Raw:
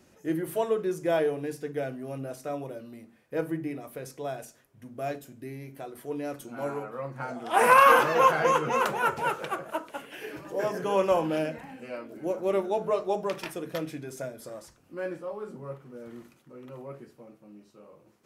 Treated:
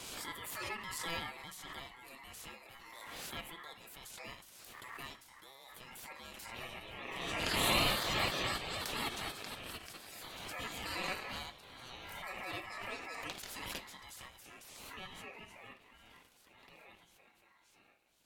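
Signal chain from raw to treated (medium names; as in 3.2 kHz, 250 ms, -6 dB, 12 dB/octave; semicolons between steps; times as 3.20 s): spectral gate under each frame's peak -15 dB weak; ring modulator 1.5 kHz; swell ahead of each attack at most 24 dB/s; trim -1 dB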